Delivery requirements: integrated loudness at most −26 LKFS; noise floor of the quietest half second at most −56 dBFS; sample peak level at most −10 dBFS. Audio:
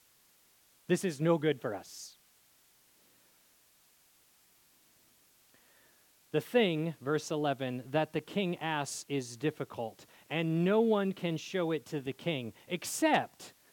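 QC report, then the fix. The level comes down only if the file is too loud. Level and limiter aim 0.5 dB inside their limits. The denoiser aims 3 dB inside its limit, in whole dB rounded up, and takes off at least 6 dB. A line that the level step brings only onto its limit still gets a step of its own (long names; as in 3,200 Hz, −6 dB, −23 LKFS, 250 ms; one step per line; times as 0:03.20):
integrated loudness −33.0 LKFS: in spec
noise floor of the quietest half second −66 dBFS: in spec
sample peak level −14.0 dBFS: in spec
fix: no processing needed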